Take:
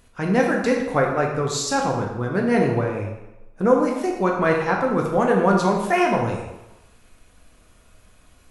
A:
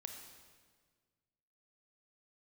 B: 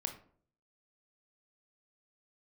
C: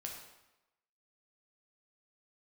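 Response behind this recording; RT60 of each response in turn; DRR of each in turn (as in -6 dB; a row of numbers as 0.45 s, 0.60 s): C; 1.6 s, 0.55 s, 0.95 s; 4.0 dB, 5.0 dB, -0.5 dB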